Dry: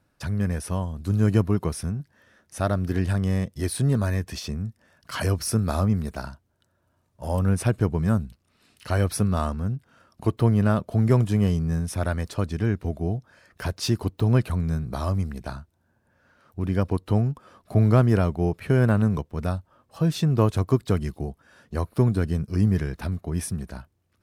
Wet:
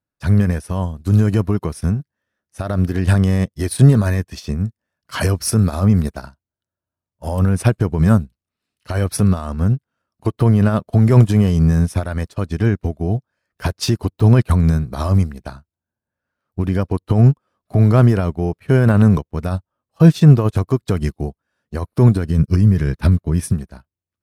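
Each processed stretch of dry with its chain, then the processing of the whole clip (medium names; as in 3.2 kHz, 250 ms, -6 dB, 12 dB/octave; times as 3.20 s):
22.30–23.53 s: peaking EQ 120 Hz +5 dB 1.4 oct + band-stop 740 Hz, Q 5.1
whole clip: loudness maximiser +18 dB; upward expansion 2.5:1, over -29 dBFS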